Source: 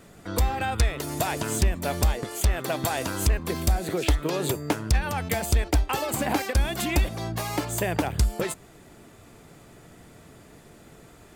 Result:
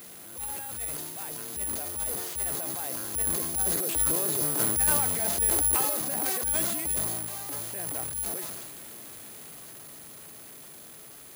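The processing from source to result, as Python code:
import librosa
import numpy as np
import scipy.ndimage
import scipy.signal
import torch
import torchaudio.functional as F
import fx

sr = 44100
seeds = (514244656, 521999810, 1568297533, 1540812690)

y = fx.delta_mod(x, sr, bps=32000, step_db=-27.5)
y = fx.doppler_pass(y, sr, speed_mps=13, closest_m=17.0, pass_at_s=4.85)
y = fx.high_shelf(y, sr, hz=4200.0, db=5.5)
y = fx.hum_notches(y, sr, base_hz=60, count=3)
y = fx.transient(y, sr, attack_db=-8, sustain_db=10)
y = fx.dynamic_eq(y, sr, hz=2700.0, q=0.94, threshold_db=-42.0, ratio=4.0, max_db=-6)
y = (np.kron(scipy.signal.resample_poly(y, 1, 4), np.eye(4)[0]) * 4)[:len(y)]
y = fx.highpass(y, sr, hz=140.0, slope=6)
y = fx.sustainer(y, sr, db_per_s=28.0)
y = F.gain(torch.from_numpy(y), -6.0).numpy()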